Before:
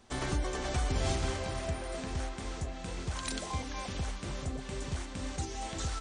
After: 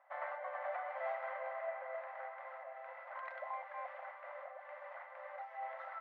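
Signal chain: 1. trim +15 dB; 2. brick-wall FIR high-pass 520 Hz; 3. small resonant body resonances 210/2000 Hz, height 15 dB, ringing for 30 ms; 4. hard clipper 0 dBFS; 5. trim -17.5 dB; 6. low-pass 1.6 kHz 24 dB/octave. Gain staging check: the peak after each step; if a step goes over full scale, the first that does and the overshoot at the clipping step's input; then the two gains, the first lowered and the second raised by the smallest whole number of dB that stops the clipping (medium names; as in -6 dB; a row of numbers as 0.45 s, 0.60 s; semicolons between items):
-4.0 dBFS, -6.5 dBFS, -5.5 dBFS, -5.5 dBFS, -23.0 dBFS, -29.0 dBFS; nothing clips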